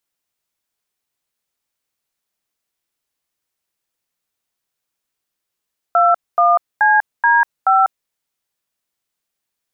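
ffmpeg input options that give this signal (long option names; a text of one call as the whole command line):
ffmpeg -f lavfi -i "aevalsrc='0.251*clip(min(mod(t,0.429),0.195-mod(t,0.429))/0.002,0,1)*(eq(floor(t/0.429),0)*(sin(2*PI*697*mod(t,0.429))+sin(2*PI*1336*mod(t,0.429)))+eq(floor(t/0.429),1)*(sin(2*PI*697*mod(t,0.429))+sin(2*PI*1209*mod(t,0.429)))+eq(floor(t/0.429),2)*(sin(2*PI*852*mod(t,0.429))+sin(2*PI*1633*mod(t,0.429)))+eq(floor(t/0.429),3)*(sin(2*PI*941*mod(t,0.429))+sin(2*PI*1633*mod(t,0.429)))+eq(floor(t/0.429),4)*(sin(2*PI*770*mod(t,0.429))+sin(2*PI*1336*mod(t,0.429))))':duration=2.145:sample_rate=44100" out.wav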